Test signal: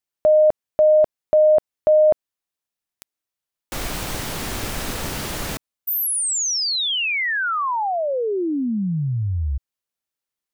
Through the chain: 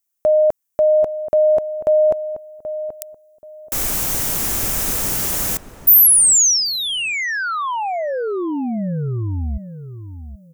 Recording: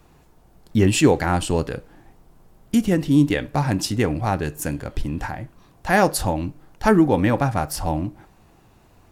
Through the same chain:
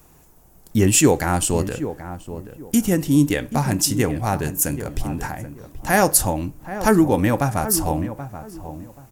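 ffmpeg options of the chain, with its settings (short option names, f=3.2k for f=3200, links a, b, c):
-filter_complex "[0:a]aexciter=amount=3.7:drive=4.8:freq=5.8k,asplit=2[a][b];[b]adelay=780,lowpass=f=1.2k:p=1,volume=-11dB,asplit=2[c][d];[d]adelay=780,lowpass=f=1.2k:p=1,volume=0.25,asplit=2[e][f];[f]adelay=780,lowpass=f=1.2k:p=1,volume=0.25[g];[c][e][g]amix=inputs=3:normalize=0[h];[a][h]amix=inputs=2:normalize=0"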